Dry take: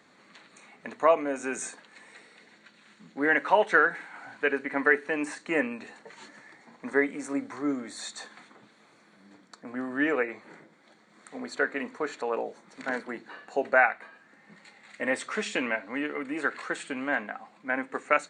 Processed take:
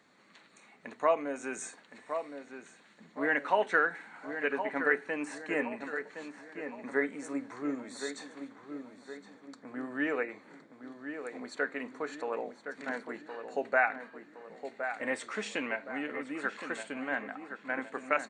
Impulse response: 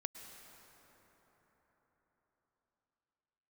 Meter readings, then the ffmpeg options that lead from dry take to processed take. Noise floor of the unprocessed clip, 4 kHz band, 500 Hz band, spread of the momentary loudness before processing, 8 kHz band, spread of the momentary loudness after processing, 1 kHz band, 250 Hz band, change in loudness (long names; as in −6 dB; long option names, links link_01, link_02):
−60 dBFS, −5.5 dB, −5.0 dB, 19 LU, −5.5 dB, 18 LU, −5.0 dB, −5.0 dB, −6.0 dB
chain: -filter_complex "[0:a]asplit=2[link_01][link_02];[link_02]adelay=1066,lowpass=frequency=2100:poles=1,volume=-8dB,asplit=2[link_03][link_04];[link_04]adelay=1066,lowpass=frequency=2100:poles=1,volume=0.48,asplit=2[link_05][link_06];[link_06]adelay=1066,lowpass=frequency=2100:poles=1,volume=0.48,asplit=2[link_07][link_08];[link_08]adelay=1066,lowpass=frequency=2100:poles=1,volume=0.48,asplit=2[link_09][link_10];[link_10]adelay=1066,lowpass=frequency=2100:poles=1,volume=0.48,asplit=2[link_11][link_12];[link_12]adelay=1066,lowpass=frequency=2100:poles=1,volume=0.48[link_13];[link_01][link_03][link_05][link_07][link_09][link_11][link_13]amix=inputs=7:normalize=0,volume=-5.5dB"